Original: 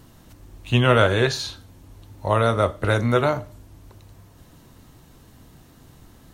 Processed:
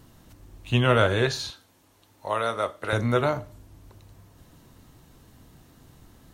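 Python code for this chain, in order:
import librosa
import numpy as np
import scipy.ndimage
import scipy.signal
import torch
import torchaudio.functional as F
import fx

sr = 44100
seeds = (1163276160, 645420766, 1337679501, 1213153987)

y = fx.highpass(x, sr, hz=650.0, slope=6, at=(1.5, 2.93))
y = F.gain(torch.from_numpy(y), -3.5).numpy()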